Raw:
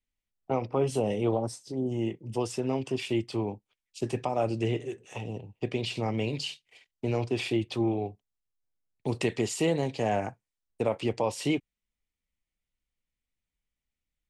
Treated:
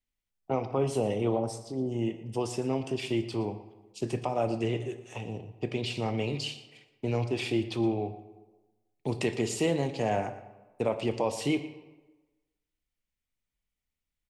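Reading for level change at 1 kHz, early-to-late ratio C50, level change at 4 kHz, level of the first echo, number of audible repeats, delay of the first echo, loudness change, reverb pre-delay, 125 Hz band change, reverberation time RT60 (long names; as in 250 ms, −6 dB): −0.5 dB, 11.5 dB, −0.5 dB, −16.0 dB, 1, 117 ms, −0.5 dB, 19 ms, −0.5 dB, 1.2 s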